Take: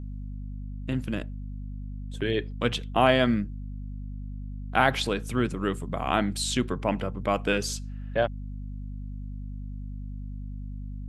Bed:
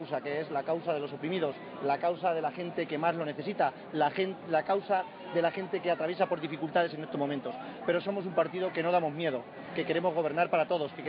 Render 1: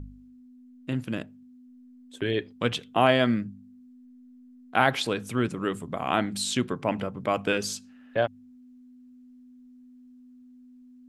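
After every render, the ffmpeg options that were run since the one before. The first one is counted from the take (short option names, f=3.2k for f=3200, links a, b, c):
-af "bandreject=f=50:t=h:w=4,bandreject=f=100:t=h:w=4,bandreject=f=150:t=h:w=4,bandreject=f=200:t=h:w=4"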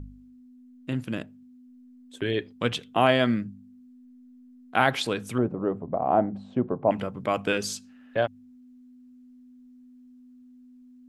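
-filter_complex "[0:a]asettb=1/sr,asplit=3[a][b][c];[a]atrim=end=5.384[d];[b]atrim=start=5.38:end=6.91,asetpts=PTS-STARTPTS,afade=t=in:d=0.004:c=qsin,afade=t=out:st=1.526:d=0.004:c=qsin,lowpass=f=710:t=q:w=2.3[e];[c]atrim=start=6.906[f];[d][e]acrossfade=d=0.004:c1=hsin:c2=qsin[g];[g][f]acrossfade=d=0.004:c1=qsin:c2=hsin"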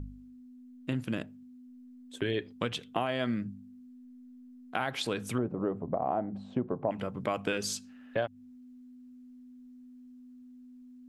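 -af "alimiter=limit=-13dB:level=0:latency=1:release=398,acompressor=threshold=-28dB:ratio=3"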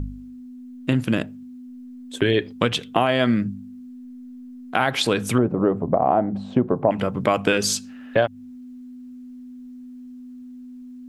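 -af "volume=12dB,alimiter=limit=-3dB:level=0:latency=1"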